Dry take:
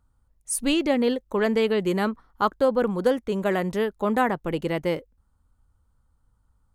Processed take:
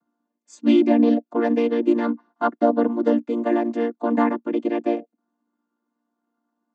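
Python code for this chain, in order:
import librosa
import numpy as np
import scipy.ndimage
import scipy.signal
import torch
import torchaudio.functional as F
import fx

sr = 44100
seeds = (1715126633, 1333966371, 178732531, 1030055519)

y = fx.chord_vocoder(x, sr, chord='major triad', root=58)
y = y * librosa.db_to_amplitude(4.5)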